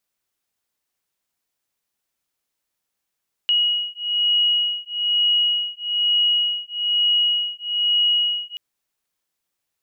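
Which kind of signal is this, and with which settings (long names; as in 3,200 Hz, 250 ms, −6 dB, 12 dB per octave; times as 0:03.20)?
two tones that beat 2,900 Hz, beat 1.1 Hz, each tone −20.5 dBFS 5.08 s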